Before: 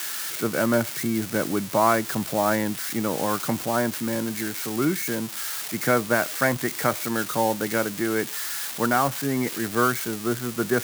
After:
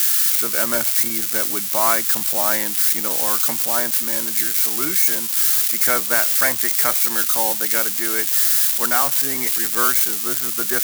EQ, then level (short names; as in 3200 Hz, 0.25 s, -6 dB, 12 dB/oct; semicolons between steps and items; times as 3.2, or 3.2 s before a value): tilt +4 dB/oct; 0.0 dB